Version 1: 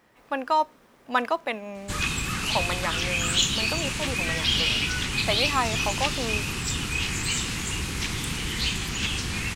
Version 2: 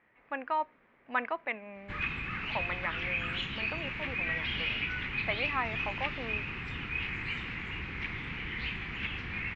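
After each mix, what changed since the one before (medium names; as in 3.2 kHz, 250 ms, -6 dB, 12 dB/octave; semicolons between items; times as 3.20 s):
master: add four-pole ladder low-pass 2.5 kHz, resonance 55%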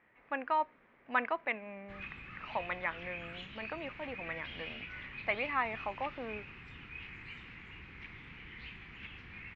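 background -12.0 dB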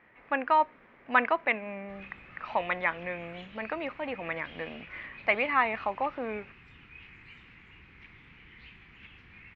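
speech +7.5 dB; background -3.5 dB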